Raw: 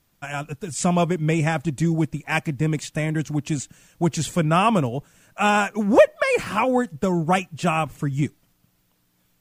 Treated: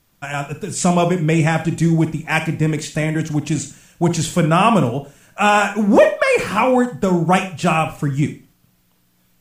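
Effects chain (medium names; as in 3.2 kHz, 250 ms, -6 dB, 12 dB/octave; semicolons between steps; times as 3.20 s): Schroeder reverb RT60 0.33 s, combs from 33 ms, DRR 8 dB; loudness maximiser +5.5 dB; trim -1 dB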